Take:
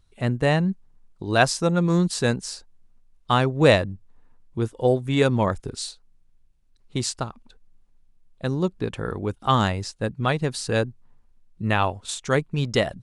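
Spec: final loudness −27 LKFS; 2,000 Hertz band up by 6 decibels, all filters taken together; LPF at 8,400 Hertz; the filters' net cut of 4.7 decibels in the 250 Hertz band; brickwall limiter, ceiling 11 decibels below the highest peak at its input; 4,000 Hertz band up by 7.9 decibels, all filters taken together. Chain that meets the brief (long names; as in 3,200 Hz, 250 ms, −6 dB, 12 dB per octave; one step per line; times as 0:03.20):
low-pass filter 8,400 Hz
parametric band 250 Hz −7.5 dB
parametric band 2,000 Hz +6 dB
parametric band 4,000 Hz +8 dB
level −2 dB
brickwall limiter −11 dBFS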